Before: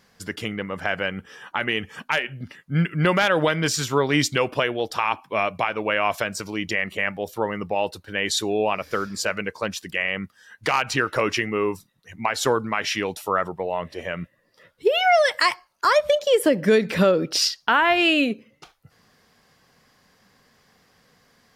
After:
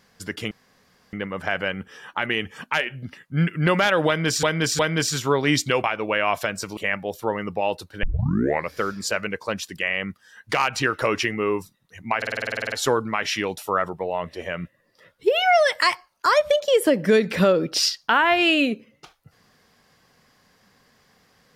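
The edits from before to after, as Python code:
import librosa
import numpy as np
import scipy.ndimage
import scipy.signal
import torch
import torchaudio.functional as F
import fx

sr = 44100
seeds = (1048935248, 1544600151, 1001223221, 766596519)

y = fx.edit(x, sr, fx.insert_room_tone(at_s=0.51, length_s=0.62),
    fx.repeat(start_s=3.45, length_s=0.36, count=3),
    fx.cut(start_s=4.5, length_s=1.11),
    fx.cut(start_s=6.54, length_s=0.37),
    fx.tape_start(start_s=8.17, length_s=0.69),
    fx.stutter(start_s=12.31, slice_s=0.05, count=12), tone=tone)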